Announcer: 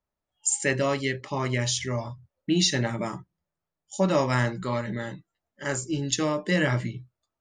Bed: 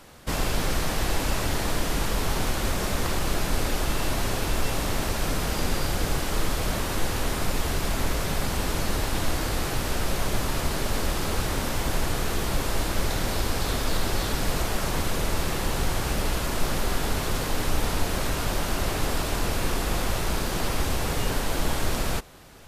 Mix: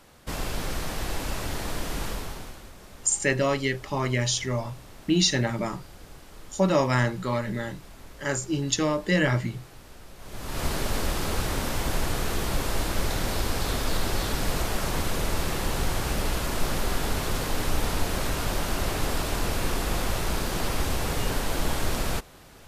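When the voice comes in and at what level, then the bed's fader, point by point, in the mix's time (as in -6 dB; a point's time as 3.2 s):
2.60 s, +1.0 dB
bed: 2.09 s -5 dB
2.71 s -20.5 dB
10.16 s -20.5 dB
10.64 s -1 dB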